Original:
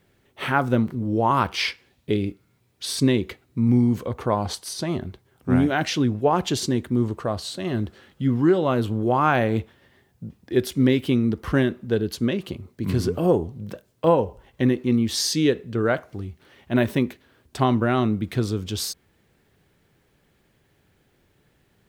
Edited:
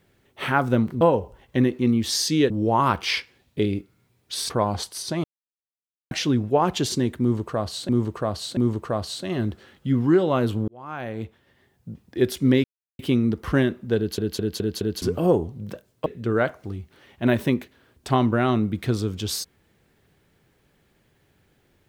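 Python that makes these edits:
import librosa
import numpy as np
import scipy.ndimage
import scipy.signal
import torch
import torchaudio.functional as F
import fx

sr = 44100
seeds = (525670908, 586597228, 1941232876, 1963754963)

y = fx.edit(x, sr, fx.cut(start_s=3.01, length_s=1.2),
    fx.silence(start_s=4.95, length_s=0.87),
    fx.repeat(start_s=6.92, length_s=0.68, count=3),
    fx.fade_in_span(start_s=9.03, length_s=1.38),
    fx.insert_silence(at_s=10.99, length_s=0.35),
    fx.stutter_over(start_s=11.97, slice_s=0.21, count=5),
    fx.move(start_s=14.06, length_s=1.49, to_s=1.01), tone=tone)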